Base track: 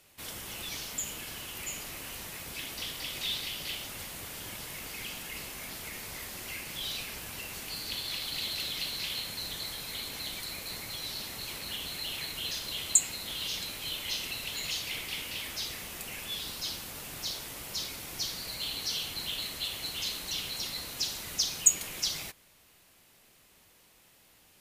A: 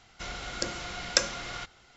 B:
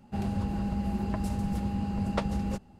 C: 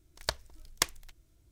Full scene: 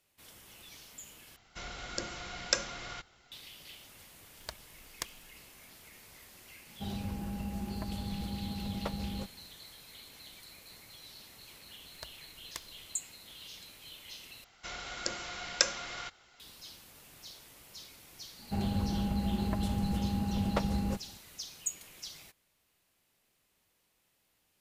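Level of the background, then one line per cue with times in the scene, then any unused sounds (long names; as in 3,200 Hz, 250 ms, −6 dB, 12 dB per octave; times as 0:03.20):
base track −13.5 dB
0:01.36: overwrite with A −5 dB
0:04.20: mix in C −11 dB
0:06.68: mix in B −7.5 dB
0:11.74: mix in C −15.5 dB
0:14.44: overwrite with A −2.5 dB + low-shelf EQ 340 Hz −8 dB
0:18.39: mix in B −1.5 dB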